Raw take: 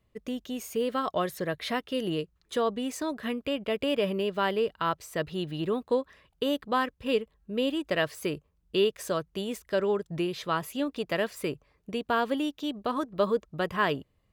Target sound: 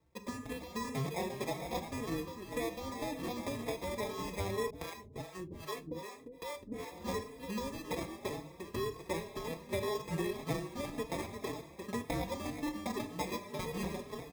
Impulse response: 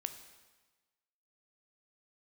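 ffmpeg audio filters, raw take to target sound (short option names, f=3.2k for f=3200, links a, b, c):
-filter_complex "[0:a]tiltshelf=f=970:g=-6.5,acompressor=threshold=-37dB:ratio=6,lowpass=2.2k,asplit=2[a][b];[b]adelay=349.9,volume=-7dB,highshelf=f=4k:g=-7.87[c];[a][c]amix=inputs=2:normalize=0,acrusher=samples=30:mix=1:aa=0.000001,highpass=f=84:p=1[d];[1:a]atrim=start_sample=2205[e];[d][e]afir=irnorm=-1:irlink=0,asettb=1/sr,asplit=3[f][g][h];[f]atrim=end=4.704[i];[g]atrim=start=4.7:end=6.92,asetpts=PTS-STARTPTS,afade=t=in:d=0.004:c=qsin,afade=t=out:st=2.216:d=0.004:c=qsin,acrossover=split=430[j][k];[j]aeval=exprs='val(0)*(1-1/2+1/2*cos(2*PI*2.5*n/s))':c=same[l];[k]aeval=exprs='val(0)*(1-1/2-1/2*cos(2*PI*2.5*n/s))':c=same[m];[l][m]amix=inputs=2:normalize=0[n];[h]atrim=start=6.916[o];[i][n]acrossfade=d=0.004:c1=hsin:c2=qsin[p];[p][o]acrossfade=d=0.004:c1=qsin:c2=hsin,lowshelf=f=150:g=8,bandreject=f=50:t=h:w=6,bandreject=f=100:t=h:w=6,bandreject=f=150:t=h:w=6,bandreject=f=200:t=h:w=6,bandreject=f=250:t=h:w=6,asplit=2[q][r];[r]adelay=4.1,afreqshift=1.9[s];[q][s]amix=inputs=2:normalize=1,volume=7dB"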